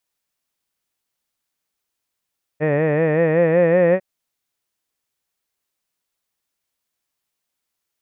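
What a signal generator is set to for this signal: formant-synthesis vowel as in head, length 1.40 s, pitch 147 Hz, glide +3.5 st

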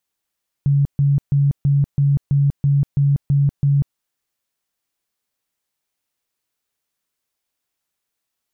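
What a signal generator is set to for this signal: tone bursts 141 Hz, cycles 27, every 0.33 s, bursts 10, -12 dBFS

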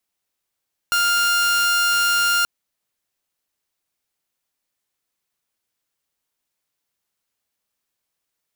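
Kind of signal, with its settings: tone saw 1.4 kHz -13.5 dBFS 1.53 s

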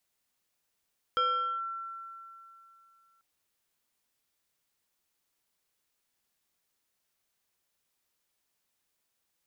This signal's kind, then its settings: FM tone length 2.04 s, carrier 1.35 kHz, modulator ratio 1.37, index 0.64, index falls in 0.44 s linear, decay 2.84 s, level -23 dB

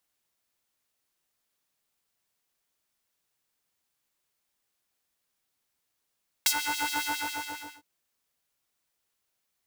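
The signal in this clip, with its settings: synth patch with filter wobble G2, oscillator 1 triangle, oscillator 2 square, interval +19 st, oscillator 2 level -9.5 dB, noise -21.5 dB, filter highpass, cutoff 1.1 kHz, Q 1.3, filter envelope 1.5 oct, filter decay 0.12 s, filter sustain 45%, attack 3.7 ms, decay 0.07 s, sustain -15 dB, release 0.82 s, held 0.54 s, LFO 7.3 Hz, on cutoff 1.2 oct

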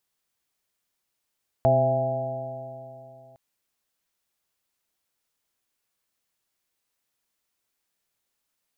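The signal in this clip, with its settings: stretched partials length 1.71 s, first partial 127 Hz, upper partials -8/-11.5/-6.5/5.5/-4 dB, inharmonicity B 0.0036, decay 2.99 s, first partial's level -22 dB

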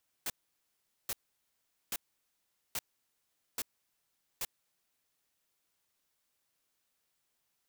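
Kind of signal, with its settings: noise bursts white, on 0.04 s, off 0.79 s, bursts 6, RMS -35.5 dBFS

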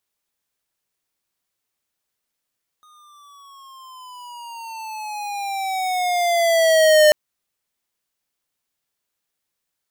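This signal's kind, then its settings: gliding synth tone square, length 4.29 s, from 1.24 kHz, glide -12.5 st, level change +39.5 dB, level -11 dB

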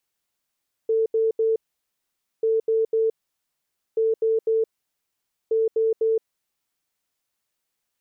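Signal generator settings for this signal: beep pattern sine 446 Hz, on 0.17 s, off 0.08 s, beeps 3, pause 0.87 s, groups 4, -17.5 dBFS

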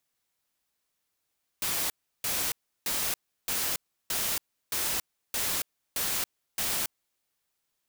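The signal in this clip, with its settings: noise bursts white, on 0.28 s, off 0.34 s, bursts 9, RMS -29.5 dBFS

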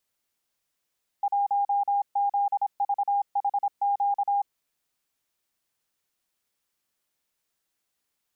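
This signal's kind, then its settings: Morse "1ZVHQ" 26 wpm 807 Hz -21 dBFS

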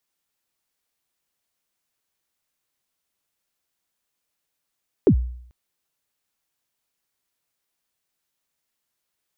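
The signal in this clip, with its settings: kick drum length 0.44 s, from 470 Hz, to 61 Hz, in 82 ms, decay 0.65 s, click off, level -8.5 dB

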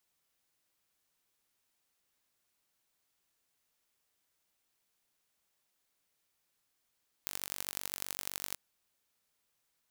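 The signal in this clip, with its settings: pulse train 47.8 per s, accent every 4, -8 dBFS 1.28 s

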